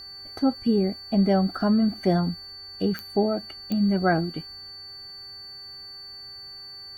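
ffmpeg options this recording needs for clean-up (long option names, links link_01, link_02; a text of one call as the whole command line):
ffmpeg -i in.wav -af "adeclick=threshold=4,bandreject=frequency=391.9:width_type=h:width=4,bandreject=frequency=783.8:width_type=h:width=4,bandreject=frequency=1175.7:width_type=h:width=4,bandreject=frequency=1567.6:width_type=h:width=4,bandreject=frequency=1959.5:width_type=h:width=4,bandreject=frequency=4500:width=30" out.wav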